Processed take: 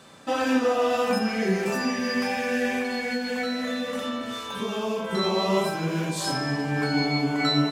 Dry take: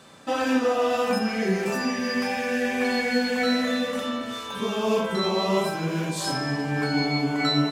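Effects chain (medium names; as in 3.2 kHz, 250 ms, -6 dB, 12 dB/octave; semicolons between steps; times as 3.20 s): 2.78–5.13 s: compression, threshold -25 dBFS, peak gain reduction 7 dB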